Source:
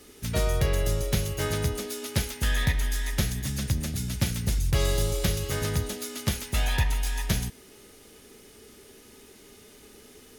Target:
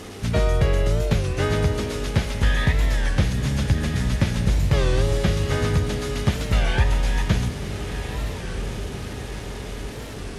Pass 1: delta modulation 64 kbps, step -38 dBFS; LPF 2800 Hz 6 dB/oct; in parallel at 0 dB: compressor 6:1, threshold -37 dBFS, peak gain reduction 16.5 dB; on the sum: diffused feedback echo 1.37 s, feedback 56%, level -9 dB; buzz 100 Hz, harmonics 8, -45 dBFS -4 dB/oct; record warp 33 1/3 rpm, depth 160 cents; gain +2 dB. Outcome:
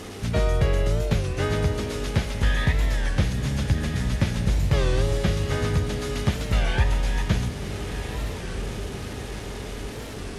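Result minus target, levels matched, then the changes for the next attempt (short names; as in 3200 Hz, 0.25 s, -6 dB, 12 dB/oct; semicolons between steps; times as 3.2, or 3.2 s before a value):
compressor: peak gain reduction +8.5 dB
change: compressor 6:1, threshold -27 dBFS, peak gain reduction 8.5 dB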